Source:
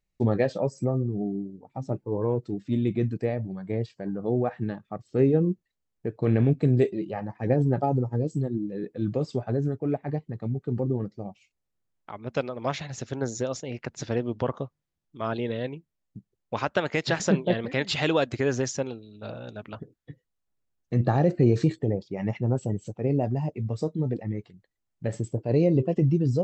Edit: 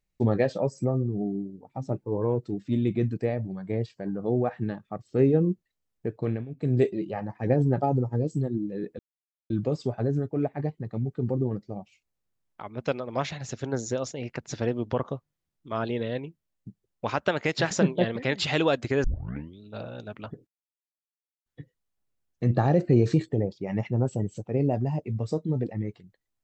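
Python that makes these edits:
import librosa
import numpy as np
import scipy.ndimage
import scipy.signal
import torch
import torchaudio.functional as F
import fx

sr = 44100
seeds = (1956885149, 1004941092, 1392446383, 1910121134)

y = fx.edit(x, sr, fx.fade_down_up(start_s=6.12, length_s=0.71, db=-19.5, fade_s=0.34),
    fx.insert_silence(at_s=8.99, length_s=0.51),
    fx.tape_start(start_s=18.53, length_s=0.57),
    fx.insert_silence(at_s=19.96, length_s=0.99), tone=tone)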